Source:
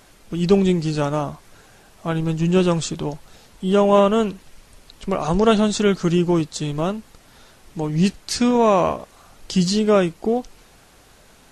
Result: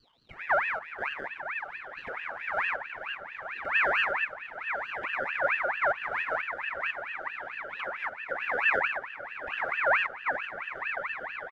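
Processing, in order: stepped spectrum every 0.1 s; bell 190 Hz -7 dB 1.4 oct; comb 5.4 ms, depth 89%; in parallel at -2 dB: limiter -13.5 dBFS, peak gain reduction 8.5 dB; on the sum: sample-and-hold 29×; auto-wah 450–2300 Hz, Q 9, down, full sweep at -18.5 dBFS; on a send: diffused feedback echo 0.996 s, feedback 69%, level -8 dB; on the sum: ring modulator with a swept carrier 1600 Hz, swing 40%, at 4.5 Hz

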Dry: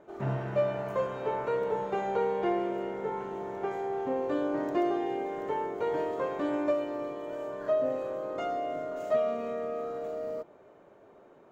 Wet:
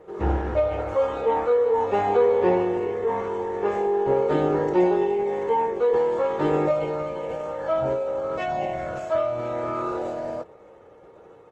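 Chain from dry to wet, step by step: formant-preserving pitch shift -11.5 st; comb 2.3 ms, depth 42%; gain +8 dB; Opus 20 kbps 48000 Hz

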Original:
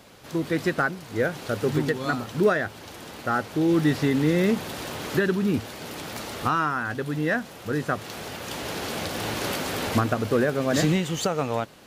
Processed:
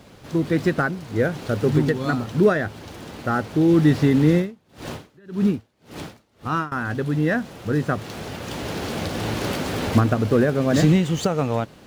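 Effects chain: median filter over 3 samples; low shelf 360 Hz +8.5 dB; 4.34–6.72 dB-linear tremolo 1.8 Hz, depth 34 dB

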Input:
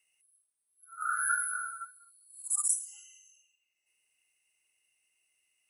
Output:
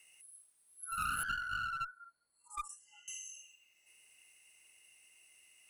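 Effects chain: 1.23–3.08 LPF 1400 Hz 12 dB/oct; compressor 5:1, threshold -45 dBFS, peak gain reduction 15.5 dB; one-sided clip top -50.5 dBFS; gain +12 dB

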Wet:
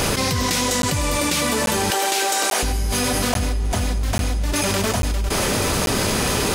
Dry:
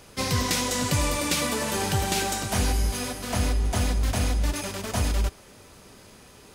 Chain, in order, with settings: 1.9–2.63 HPF 360 Hz 24 dB/oct; crackling interface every 0.84 s, samples 512, zero, from 0.82; fast leveller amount 100%

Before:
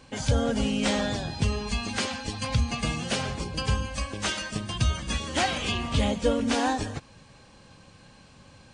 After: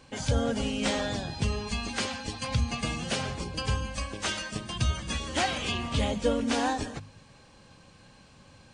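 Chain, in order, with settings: de-hum 51.55 Hz, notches 5; gain -2 dB

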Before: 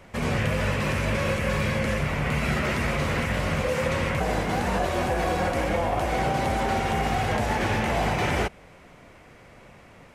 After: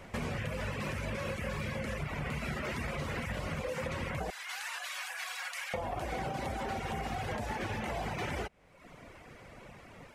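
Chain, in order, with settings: reverb removal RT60 0.78 s; 4.3–5.74 Bessel high-pass 1900 Hz, order 4; compressor 4:1, threshold -35 dBFS, peak gain reduction 11 dB

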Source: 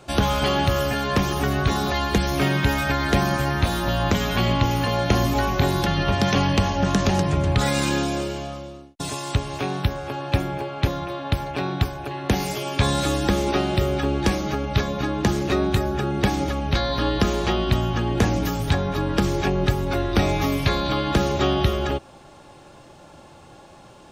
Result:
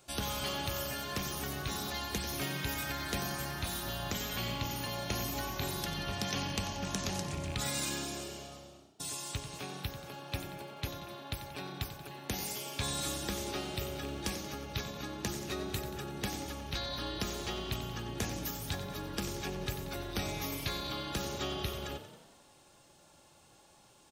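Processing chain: rattling part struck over -17 dBFS, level -22 dBFS; pre-emphasis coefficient 0.8; frequency-shifting echo 91 ms, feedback 59%, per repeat +30 Hz, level -11.5 dB; gain -4 dB

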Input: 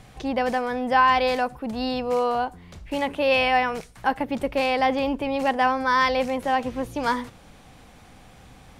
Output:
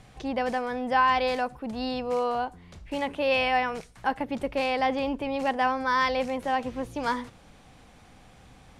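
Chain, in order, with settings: LPF 11000 Hz 12 dB/oct; gain -4 dB

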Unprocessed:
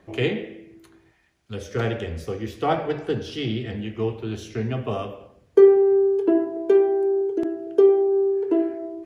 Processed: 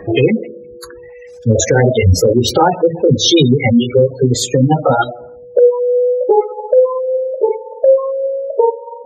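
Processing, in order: gliding pitch shift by +6.5 st starting unshifted; Doppler pass-by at 2.55, 8 m/s, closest 5.5 m; reverb removal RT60 1.6 s; spectral gate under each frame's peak -15 dB strong; high shelf 2500 Hz +6.5 dB; compressor 6:1, threshold -37 dBFS, peak gain reduction 18 dB; whine 490 Hz -65 dBFS; maximiser +33 dB; gain -1 dB

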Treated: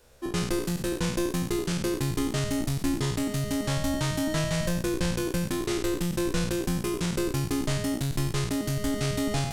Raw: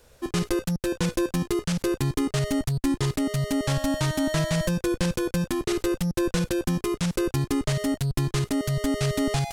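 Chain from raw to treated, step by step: spectral trails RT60 0.74 s; gain -4 dB

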